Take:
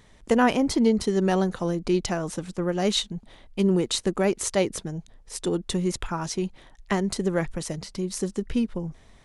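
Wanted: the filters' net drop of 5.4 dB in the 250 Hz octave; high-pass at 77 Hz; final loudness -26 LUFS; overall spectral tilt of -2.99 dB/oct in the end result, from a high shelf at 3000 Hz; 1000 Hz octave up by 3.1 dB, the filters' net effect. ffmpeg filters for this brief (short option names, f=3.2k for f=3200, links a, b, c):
-af "highpass=77,equalizer=f=250:t=o:g=-8,equalizer=f=1k:t=o:g=4,highshelf=f=3k:g=6.5,volume=0.5dB"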